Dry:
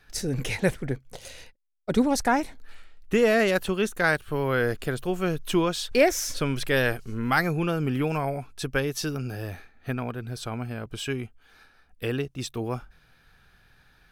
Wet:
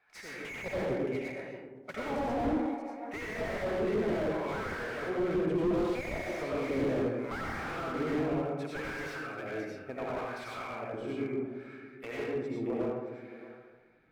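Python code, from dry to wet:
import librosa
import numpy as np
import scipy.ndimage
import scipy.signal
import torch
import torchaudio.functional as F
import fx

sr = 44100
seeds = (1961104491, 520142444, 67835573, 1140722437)

y = fx.peak_eq(x, sr, hz=2200.0, db=15.0, octaves=0.27)
y = fx.hpss(y, sr, part='harmonic', gain_db=-3)
y = fx.high_shelf(y, sr, hz=10000.0, db=10.0)
y = fx.mod_noise(y, sr, seeds[0], snr_db=18)
y = fx.filter_lfo_bandpass(y, sr, shape='sine', hz=0.7, low_hz=290.0, high_hz=1800.0, q=1.5)
y = y + 10.0 ** (-16.5 / 20.0) * np.pad(y, (int(623 * sr / 1000.0), 0))[:len(y)]
y = fx.rev_freeverb(y, sr, rt60_s=1.2, hf_ratio=0.35, predelay_ms=55, drr_db=-7.0)
y = fx.slew_limit(y, sr, full_power_hz=28.0)
y = F.gain(torch.from_numpy(y), -3.5).numpy()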